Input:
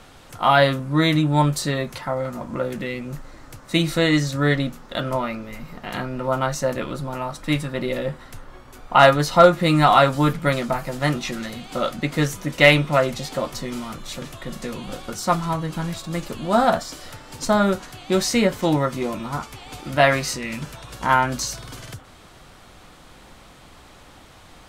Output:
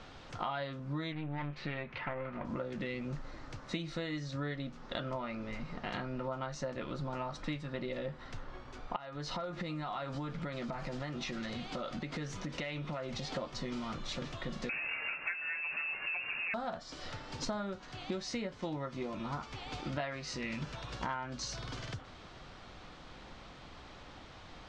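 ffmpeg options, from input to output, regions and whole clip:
-filter_complex "[0:a]asettb=1/sr,asplit=3[a][b][c];[a]atrim=end=1.124[d];[b]atrim=start=1.12:end=2.45,asetpts=PTS-STARTPTS,afade=t=in:d=0.004:c=qsin,afade=t=out:st=1.326:d=0.004:c=qsin,aeval=exprs='(tanh(8.91*val(0)+0.65)-tanh(0.65))/8.91':c=same,lowpass=f=2.4k:t=q:w=2.7[e];[c]atrim=start=2.446[f];[d][e]acrossfade=d=0.004:c1=hsin:c2=qsin[g];[g][f]acrossfade=d=0.004:c1=qsin:c2=hsin,asettb=1/sr,asplit=3[h][i][j];[h]atrim=end=8.964[k];[i]atrim=start=8.96:end=13.34,asetpts=PTS-STARTPTS,afade=t=in:d=0.004:c=qsin,afade=t=out:st=4.376:d=0.004:c=qsin,acompressor=threshold=-29dB:ratio=6:attack=3.2:release=140:knee=1:detection=peak,aecho=1:1:328:0.0631,atrim=end_sample=193158[l];[j]atrim=start=13.336[m];[k][l]acrossfade=d=0.004:c1=hsin:c2=qsin[n];[n][m]acrossfade=d=0.004:c1=qsin:c2=hsin,asettb=1/sr,asplit=3[o][p][q];[o]atrim=end=14.694[r];[p]atrim=start=14.69:end=16.54,asetpts=PTS-STARTPTS,afade=t=in:d=0.004:c=qsin,afade=t=out:st=1.846:d=0.004:c=qsin,aeval=exprs='val(0)+0.5*0.0708*sgn(val(0))':c=same,lowpass=f=2.4k:t=q:w=0.5098,lowpass=f=2.4k:t=q:w=0.6013,lowpass=f=2.4k:t=q:w=0.9,lowpass=f=2.4k:t=q:w=2.563,afreqshift=-2800[s];[q]atrim=start=16.536[t];[r][s]acrossfade=d=0.004:c1=hsin:c2=qsin[u];[u][t]acrossfade=d=0.004:c1=qsin:c2=hsin,lowpass=f=5.7k:w=0.5412,lowpass=f=5.7k:w=1.3066,acompressor=threshold=-30dB:ratio=12,volume=-4.5dB"

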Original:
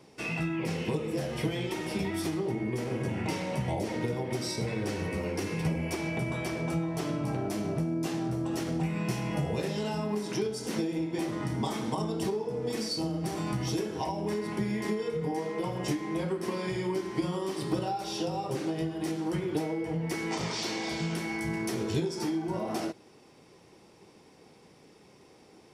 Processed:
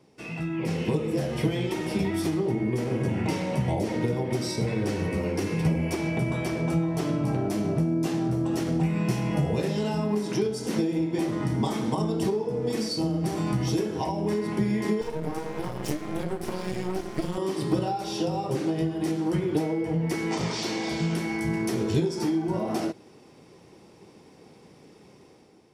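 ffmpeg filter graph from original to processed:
-filter_complex "[0:a]asettb=1/sr,asplit=3[a][b][c];[a]atrim=end=15.014[d];[b]atrim=start=15.01:end=17.38,asetpts=PTS-STARTPTS,afade=t=in:d=0.004:c=qsin,afade=t=out:st=2.366:d=0.004:c=qsin,aeval=exprs='max(val(0),0)':c=same,highshelf=f=8.5k:g=9[e];[c]atrim=start=17.376[f];[d][e]acrossfade=d=0.004:c1=hsin:c2=qsin[g];[g][f]acrossfade=d=0.004:c1=qsin:c2=hsin,dynaudnorm=f=220:g=5:m=8dB,equalizer=f=170:w=0.32:g=4.5,volume=-6.5dB"

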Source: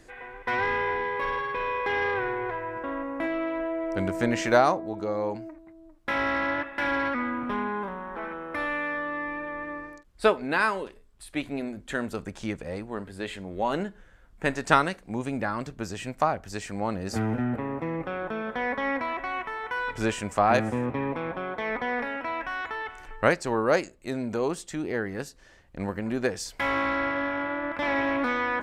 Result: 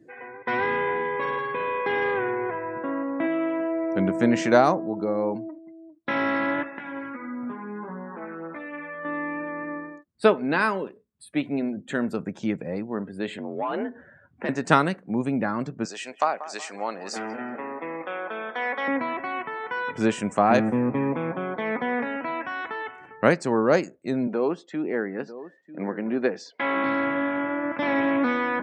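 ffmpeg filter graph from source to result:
-filter_complex "[0:a]asettb=1/sr,asplit=3[a][b][c];[a]atrim=end=6.784[d];[b]atrim=start=6.78:end=9.05,asetpts=PTS-STARTPTS,afade=t=in:d=0.004:c=qsin,afade=t=out:st=2.266:d=0.004:c=qsin,acompressor=threshold=-32dB:ratio=8:attack=3.2:release=140:knee=1:detection=peak,flanger=delay=16.5:depth=2.4:speed=1.6[e];[c]atrim=start=9.046[f];[d][e]acrossfade=d=0.004:c1=hsin:c2=qsin[g];[g][f]acrossfade=d=0.004:c1=qsin:c2=hsin,asettb=1/sr,asplit=3[h][i][j];[h]atrim=end=13.384[k];[i]atrim=start=13.38:end=14.49,asetpts=PTS-STARTPTS,afade=t=in:d=0.004:c=qsin,afade=t=out:st=1.106:d=0.004:c=qsin,afreqshift=50,asplit=2[l][m];[m]highpass=f=720:p=1,volume=17dB,asoftclip=type=tanh:threshold=-11dB[n];[l][n]amix=inputs=2:normalize=0,lowpass=f=1.7k:p=1,volume=-6dB,acompressor=threshold=-41dB:ratio=1.5:attack=3.2:release=140:knee=1:detection=peak[o];[j]atrim=start=14.486[p];[k][o]acrossfade=d=0.004:c1=hsin:c2=qsin[q];[q][p]acrossfade=d=0.004:c1=qsin:c2=hsin,asettb=1/sr,asplit=3[r][s][t];[r]atrim=end=15.854[u];[s]atrim=start=15.85:end=18.88,asetpts=PTS-STARTPTS,afade=t=in:d=0.004:c=qsin,afade=t=out:st=3.026:d=0.004:c=qsin,highpass=570,lowpass=8k,highshelf=f=2.5k:g=6,asplit=2[v][w];[w]adelay=186,lowpass=f=3.3k:p=1,volume=-14dB,asplit=2[x][y];[y]adelay=186,lowpass=f=3.3k:p=1,volume=0.47,asplit=2[z][aa];[aa]adelay=186,lowpass=f=3.3k:p=1,volume=0.47,asplit=2[ab][ac];[ac]adelay=186,lowpass=f=3.3k:p=1,volume=0.47[ad];[v][x][z][ab][ad]amix=inputs=5:normalize=0,atrim=end_sample=133623[ae];[t]atrim=start=18.876[af];[u][ae]acrossfade=d=0.004:c1=hsin:c2=qsin[ag];[ag][af]acrossfade=d=0.004:c1=qsin:c2=hsin,asettb=1/sr,asplit=3[ah][ai][aj];[ah]atrim=end=24.274[ak];[ai]atrim=start=24.27:end=26.84,asetpts=PTS-STARTPTS,afade=t=in:d=0.004:c=qsin,afade=t=out:st=2.566:d=0.004:c=qsin,highpass=260,lowpass=4k,aecho=1:1:945:0.178,atrim=end_sample=113337[al];[aj]atrim=start=26.836[am];[ak][al]acrossfade=d=0.004:c1=hsin:c2=qsin[an];[an][am]acrossfade=d=0.004:c1=qsin:c2=hsin,afftdn=nr=21:nf=-50,highpass=f=150:w=0.5412,highpass=f=150:w=1.3066,lowshelf=f=310:g=11"

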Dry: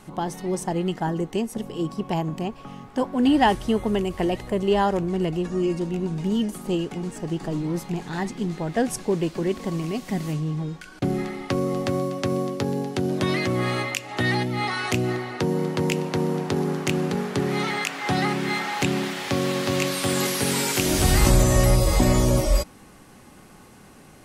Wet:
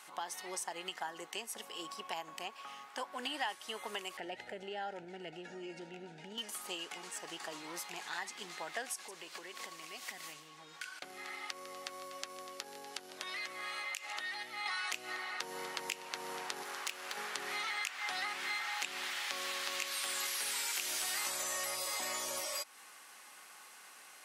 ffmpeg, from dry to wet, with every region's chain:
-filter_complex "[0:a]asettb=1/sr,asplit=3[a][b][c];[a]atrim=end=4.174[d];[b]atrim=start=4.17:end=6.38,asetpts=PTS-STARTPTS,afade=t=in:d=0.004:c=qsin,afade=t=out:st=2.206:d=0.004:c=qsin,aemphasis=mode=reproduction:type=riaa,acompressor=threshold=-19dB:ratio=6:attack=3.2:release=140:knee=1:detection=peak,asuperstop=centerf=1100:order=8:qfactor=3[e];[c]atrim=start=6.376[f];[d][e]acrossfade=d=0.004:c1=hsin:c2=qsin[g];[g][f]acrossfade=d=0.004:c1=qsin:c2=hsin,asettb=1/sr,asplit=3[h][i][j];[h]atrim=end=8.934[k];[i]atrim=start=8.93:end=14.66,asetpts=PTS-STARTPTS,afade=t=in:d=0.004:c=qsin,afade=t=out:st=5.726:d=0.004:c=qsin,acompressor=threshold=-31dB:ratio=4:attack=3.2:release=140:knee=1:detection=peak,aecho=1:1:152:0.158,atrim=end_sample=252693[l];[j]atrim=start=14.656[m];[k][l]acrossfade=d=0.004:c1=hsin:c2=qsin[n];[n][m]acrossfade=d=0.004:c1=qsin:c2=hsin,asettb=1/sr,asplit=3[o][p][q];[o]atrim=end=16.634[r];[p]atrim=start=16.63:end=17.17,asetpts=PTS-STARTPTS,afade=t=in:d=0.004:c=qsin,afade=t=out:st=0.536:d=0.004:c=qsin,highpass=f=500:p=1,aeval=exprs='clip(val(0),-1,0.0316)':c=same[s];[q]atrim=start=17.166[t];[r][s]acrossfade=d=0.004:c1=hsin:c2=qsin[u];[u][t]acrossfade=d=0.004:c1=qsin:c2=hsin,highpass=1.2k,acompressor=threshold=-38dB:ratio=3"

